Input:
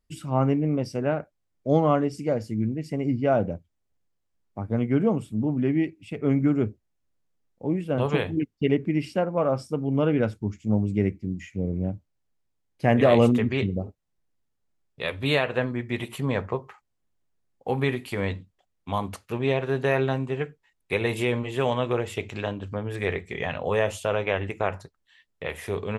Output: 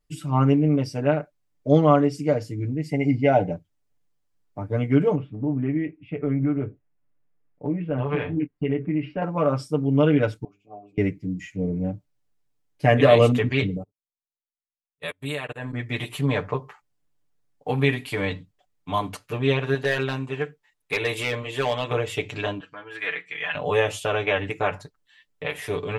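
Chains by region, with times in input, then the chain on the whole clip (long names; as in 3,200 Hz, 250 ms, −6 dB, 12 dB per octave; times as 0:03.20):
0:02.80–0:03.52: parametric band 1,200 Hz −14 dB 0.27 octaves + hollow resonant body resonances 790/2,100 Hz, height 12 dB, ringing for 30 ms
0:05.15–0:09.22: low-pass filter 2,500 Hz 24 dB per octave + downward compressor 3 to 1, threshold −25 dBFS + double-tracking delay 23 ms −12 dB
0:10.44–0:10.98: formant filter a + mains-hum notches 50/100/150/200/250/300/350/400/450 Hz
0:13.77–0:15.73: high shelf with overshoot 6,700 Hz +7.5 dB, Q 3 + output level in coarse steps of 16 dB + expander for the loud parts 2.5 to 1, over −53 dBFS
0:19.74–0:21.91: low-shelf EQ 320 Hz −7 dB + hard clipping −18.5 dBFS
0:22.60–0:23.55: resonant band-pass 1,900 Hz, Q 0.98 + comb filter 6.1 ms, depth 70%
whole clip: dynamic equaliser 3,100 Hz, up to +4 dB, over −42 dBFS, Q 0.71; comb filter 6.8 ms, depth 97%; level −1 dB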